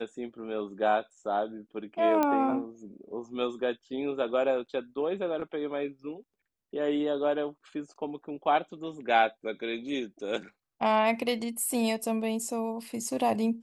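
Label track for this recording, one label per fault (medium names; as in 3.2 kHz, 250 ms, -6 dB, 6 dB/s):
2.230000	2.230000	pop -13 dBFS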